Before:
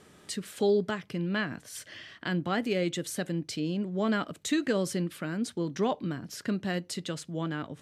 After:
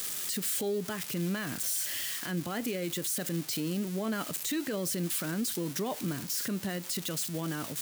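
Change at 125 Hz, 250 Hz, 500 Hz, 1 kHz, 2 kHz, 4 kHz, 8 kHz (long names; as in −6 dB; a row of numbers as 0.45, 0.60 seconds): −2.0, −3.0, −5.5, −5.0, −3.5, +1.5, +8.0 decibels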